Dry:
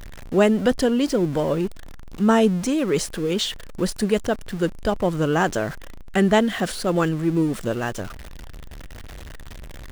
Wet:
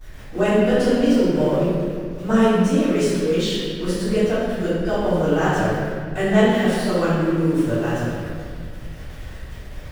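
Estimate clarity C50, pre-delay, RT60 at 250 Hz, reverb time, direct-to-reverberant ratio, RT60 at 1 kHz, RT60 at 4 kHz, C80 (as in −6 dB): −3.5 dB, 3 ms, 2.7 s, 2.0 s, −19.5 dB, 1.7 s, 1.3 s, −0.5 dB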